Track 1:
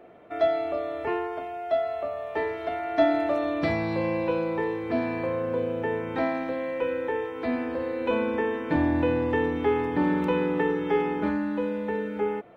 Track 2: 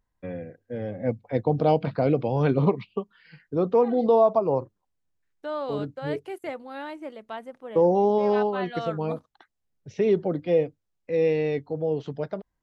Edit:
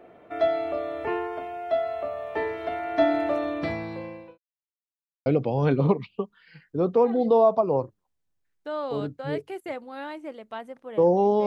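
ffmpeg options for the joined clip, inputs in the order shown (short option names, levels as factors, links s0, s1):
-filter_complex "[0:a]apad=whole_dur=11.46,atrim=end=11.46,asplit=2[s0][s1];[s0]atrim=end=4.38,asetpts=PTS-STARTPTS,afade=t=out:st=3.33:d=1.05[s2];[s1]atrim=start=4.38:end=5.26,asetpts=PTS-STARTPTS,volume=0[s3];[1:a]atrim=start=2.04:end=8.24,asetpts=PTS-STARTPTS,afade=t=in:d=0.004:c=hsin[s4];[s2][s3][s4]concat=n=3:v=0:a=1"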